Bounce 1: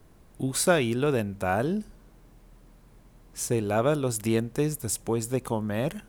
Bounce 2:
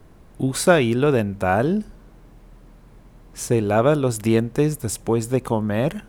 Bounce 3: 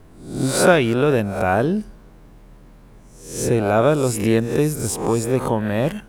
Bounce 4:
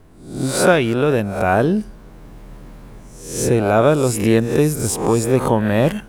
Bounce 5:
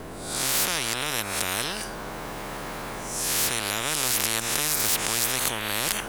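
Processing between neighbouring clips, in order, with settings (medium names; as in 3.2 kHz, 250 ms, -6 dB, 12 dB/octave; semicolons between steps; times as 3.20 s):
treble shelf 4.4 kHz -7.5 dB; trim +7 dB
reverse spectral sustain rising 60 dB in 0.59 s
level rider gain up to 9 dB; trim -1 dB
spectrum-flattening compressor 10:1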